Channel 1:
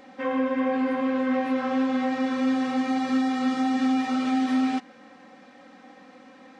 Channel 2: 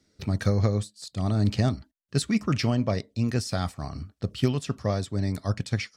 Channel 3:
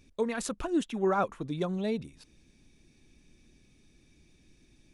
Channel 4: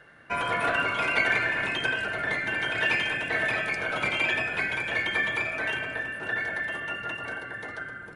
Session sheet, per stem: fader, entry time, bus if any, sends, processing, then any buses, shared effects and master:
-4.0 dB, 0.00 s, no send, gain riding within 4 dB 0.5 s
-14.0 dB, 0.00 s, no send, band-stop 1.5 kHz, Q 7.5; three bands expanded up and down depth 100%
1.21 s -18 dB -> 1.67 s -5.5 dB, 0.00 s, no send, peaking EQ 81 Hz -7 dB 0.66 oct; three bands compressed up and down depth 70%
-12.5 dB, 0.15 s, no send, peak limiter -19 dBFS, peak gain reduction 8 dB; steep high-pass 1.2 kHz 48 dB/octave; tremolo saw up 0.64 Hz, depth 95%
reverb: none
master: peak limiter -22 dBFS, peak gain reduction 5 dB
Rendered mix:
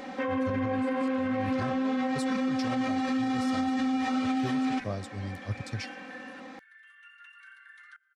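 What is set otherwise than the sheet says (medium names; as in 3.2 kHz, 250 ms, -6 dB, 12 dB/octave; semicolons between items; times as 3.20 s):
stem 1 -4.0 dB -> +5.5 dB; stem 2 -14.0 dB -> -6.5 dB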